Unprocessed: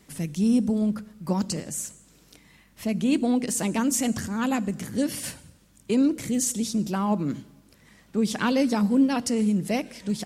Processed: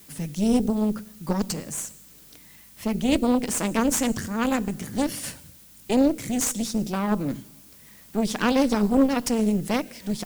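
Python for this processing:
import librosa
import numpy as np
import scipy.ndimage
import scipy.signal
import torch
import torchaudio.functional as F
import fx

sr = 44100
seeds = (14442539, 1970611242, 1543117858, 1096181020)

y = fx.cheby_harmonics(x, sr, harmonics=(4, 6, 8), levels_db=(-8, -18, -31), full_scale_db=-11.5)
y = fx.dmg_noise_colour(y, sr, seeds[0], colour='blue', level_db=-51.0)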